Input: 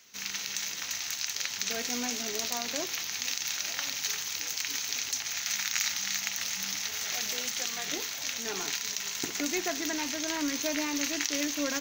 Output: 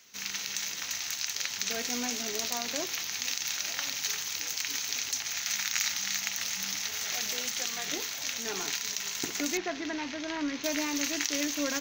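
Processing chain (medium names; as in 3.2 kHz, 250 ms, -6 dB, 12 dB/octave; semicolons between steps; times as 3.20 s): 9.57–10.64 s: distance through air 190 m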